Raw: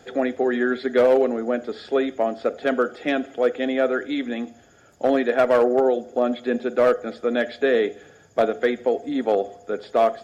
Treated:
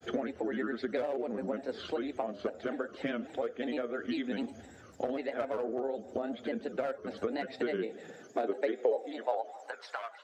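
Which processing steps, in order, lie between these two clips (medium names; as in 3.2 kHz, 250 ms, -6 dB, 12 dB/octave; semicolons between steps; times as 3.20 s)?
compression 12:1, threshold -30 dBFS, peak gain reduction 17.5 dB; granulator, spray 15 ms, pitch spread up and down by 3 st; high-pass sweep 74 Hz -> 1.3 kHz, 7.06–9.97 s; tape echo 286 ms, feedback 52%, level -22 dB, low-pass 1 kHz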